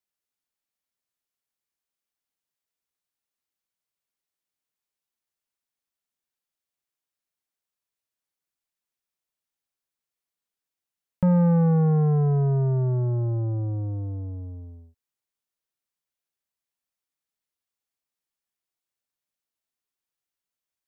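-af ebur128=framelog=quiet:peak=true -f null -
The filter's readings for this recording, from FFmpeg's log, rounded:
Integrated loudness:
  I:         -22.7 LUFS
  Threshold: -33.7 LUFS
Loudness range:
  LRA:        14.7 LU
  Threshold: -45.8 LUFS
  LRA low:   -37.2 LUFS
  LRA high:  -22.5 LUFS
True peak:
  Peak:      -16.6 dBFS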